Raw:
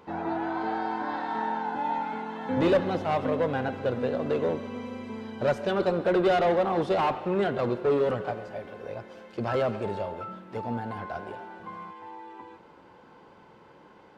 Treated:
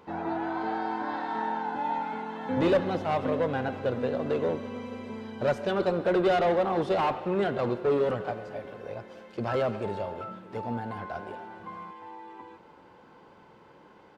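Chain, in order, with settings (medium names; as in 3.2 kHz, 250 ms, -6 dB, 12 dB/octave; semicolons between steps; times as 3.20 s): delay 616 ms -22 dB; trim -1 dB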